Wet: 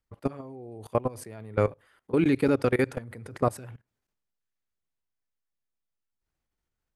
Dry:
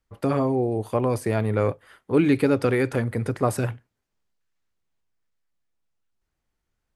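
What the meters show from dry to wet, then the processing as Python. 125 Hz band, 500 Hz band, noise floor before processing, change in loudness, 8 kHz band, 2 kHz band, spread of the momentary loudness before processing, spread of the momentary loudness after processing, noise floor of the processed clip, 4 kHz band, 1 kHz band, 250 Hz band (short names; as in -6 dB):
-7.0 dB, -4.5 dB, -80 dBFS, -4.0 dB, -7.0 dB, -4.0 dB, 7 LU, 19 LU, -84 dBFS, -5.0 dB, -4.5 dB, -5.0 dB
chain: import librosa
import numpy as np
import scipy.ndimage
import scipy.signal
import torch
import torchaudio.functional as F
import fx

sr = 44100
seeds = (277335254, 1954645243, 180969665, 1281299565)

y = fx.level_steps(x, sr, step_db=21)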